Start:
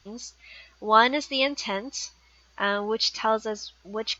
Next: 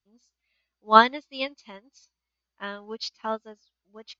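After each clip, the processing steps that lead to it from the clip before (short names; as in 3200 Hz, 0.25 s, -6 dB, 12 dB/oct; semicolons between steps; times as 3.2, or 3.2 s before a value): bell 230 Hz +5 dB 0.58 oct; upward expander 2.5:1, over -35 dBFS; gain +4.5 dB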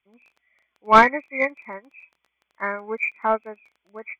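nonlinear frequency compression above 1900 Hz 4:1; crackle 16/s -46 dBFS; overdrive pedal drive 19 dB, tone 1200 Hz, clips at -0.5 dBFS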